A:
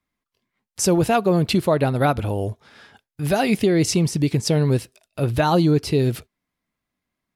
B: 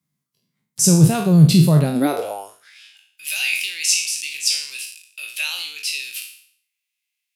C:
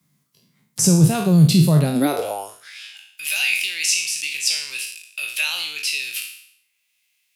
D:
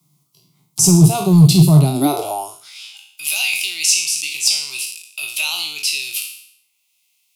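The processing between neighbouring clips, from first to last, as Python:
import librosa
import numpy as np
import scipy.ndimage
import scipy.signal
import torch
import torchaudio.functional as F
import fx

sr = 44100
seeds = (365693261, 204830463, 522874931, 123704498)

y1 = fx.spec_trails(x, sr, decay_s=0.58)
y1 = fx.bass_treble(y1, sr, bass_db=7, treble_db=14)
y1 = fx.filter_sweep_highpass(y1, sr, from_hz=150.0, to_hz=2600.0, start_s=1.8, end_s=2.8, q=6.2)
y1 = y1 * 10.0 ** (-8.0 / 20.0)
y2 = fx.band_squash(y1, sr, depth_pct=40)
y3 = np.clip(y2, -10.0 ** (-9.0 / 20.0), 10.0 ** (-9.0 / 20.0))
y3 = fx.fixed_phaser(y3, sr, hz=340.0, stages=8)
y3 = y3 * 10.0 ** (6.0 / 20.0)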